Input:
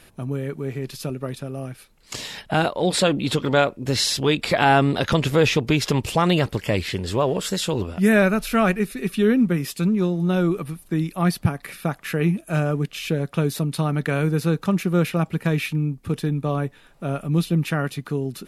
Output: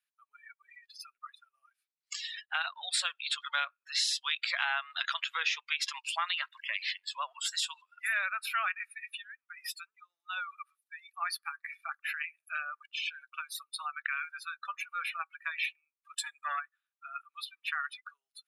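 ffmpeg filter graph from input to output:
-filter_complex "[0:a]asettb=1/sr,asplit=3[a][b][c];[a]atrim=end=8.884[d];[b]atrim=start=8.88:end=10.1,asetpts=PTS-STARTPTS,afade=t=in:d=0.004:c=qsin,afade=t=out:st=1.216:d=0.004:c=qsin,highpass=230,acompressor=threshold=-25dB:ratio=20:attack=3.2:release=140:knee=1:detection=peak,equalizer=f=320:w=0.3:g=2.5[e];[c]atrim=start=10.096[f];[d][e]acrossfade=d=0.004:c1=hsin:c2=qsin[g];[g][f]acrossfade=d=0.004:c1=qsin:c2=hsin,asettb=1/sr,asplit=3[h][i][j];[h]atrim=end=16.184[k];[i]atrim=start=16.18:end=16.6,asetpts=PTS-STARTPTS,afade=t=in:d=0.004:c=qsin,afade=t=out:st=0.416:d=0.004:c=qsin,equalizer=f=7.6k:t=o:w=0.29:g=10,aeval=exprs='0.266*sin(PI/2*1.41*val(0)/0.266)':c=same[l];[j]atrim=start=16.596[m];[k][l]acrossfade=d=0.004:c1=hsin:c2=qsin[n];[n][m]acrossfade=d=0.004:c1=qsin:c2=hsin,highpass=f=1.2k:w=0.5412,highpass=f=1.2k:w=1.3066,afftdn=nr=35:nf=-33,acompressor=threshold=-28dB:ratio=3,volume=-1dB"

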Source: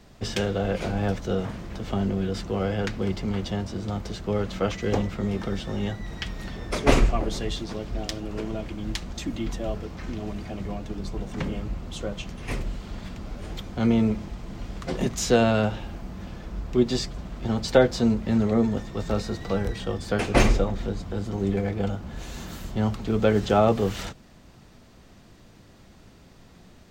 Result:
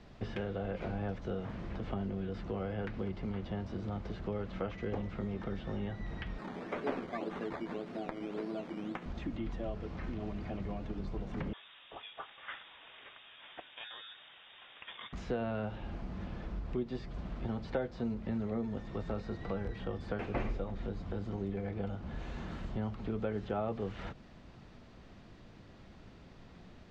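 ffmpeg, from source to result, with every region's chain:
-filter_complex "[0:a]asettb=1/sr,asplit=3[a][b][c];[a]atrim=end=6.384[d];[b]atrim=start=6.38:end=9.06,asetpts=PTS-STARTPTS,afade=t=in:d=0.004:c=qsin,afade=t=out:st=2.676:d=0.004:c=qsin,highpass=f=180:w=0.5412,highpass=f=180:w=1.3066,acrusher=samples=13:mix=1:aa=0.000001:lfo=1:lforange=7.8:lforate=1.8,asplit=2[e][f];[f]adelay=12,volume=-11dB[g];[e][g]amix=inputs=2:normalize=0,atrim=end_sample=118188[h];[c]atrim=start=9.056[i];[d][h]acrossfade=d=0.004:c1=hsin:c2=qsin[j];[j][i]acrossfade=d=0.004:c1=qsin:c2=hsin,asettb=1/sr,asplit=3[k][l][m];[k]atrim=end=11.534[n];[l]atrim=start=11.53:end=15.13,asetpts=PTS-STARTPTS,afade=t=in:d=0.004:c=qsin,afade=t=out:st=3.596:d=0.004:c=qsin,highpass=460,lowpass=f=3.3k:t=q:w=0.5098,lowpass=f=3.3k:t=q:w=0.6013,lowpass=f=3.3k:t=q:w=0.9,lowpass=f=3.3k:t=q:w=2.563,afreqshift=-3900[o];[m]atrim=start=15.126[p];[n][o]acrossfade=d=0.004:c1=hsin:c2=qsin[q];[q][p]acrossfade=d=0.004:c1=qsin:c2=hsin,acompressor=threshold=-33dB:ratio=3,lowpass=3.9k,acrossover=split=2600[r][s];[s]acompressor=threshold=-59dB:ratio=4:attack=1:release=60[t];[r][t]amix=inputs=2:normalize=0,volume=-3dB"

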